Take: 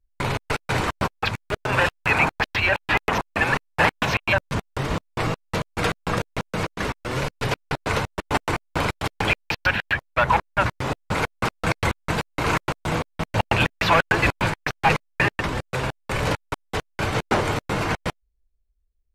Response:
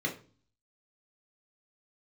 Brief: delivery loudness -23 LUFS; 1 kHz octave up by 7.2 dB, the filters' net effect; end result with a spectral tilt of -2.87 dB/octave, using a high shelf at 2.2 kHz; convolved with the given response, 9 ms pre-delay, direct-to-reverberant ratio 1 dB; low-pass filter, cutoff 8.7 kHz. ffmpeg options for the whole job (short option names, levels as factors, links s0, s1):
-filter_complex "[0:a]lowpass=8700,equalizer=f=1000:t=o:g=7.5,highshelf=f=2200:g=5.5,asplit=2[s0][s1];[1:a]atrim=start_sample=2205,adelay=9[s2];[s1][s2]afir=irnorm=-1:irlink=0,volume=0.447[s3];[s0][s3]amix=inputs=2:normalize=0,volume=0.501"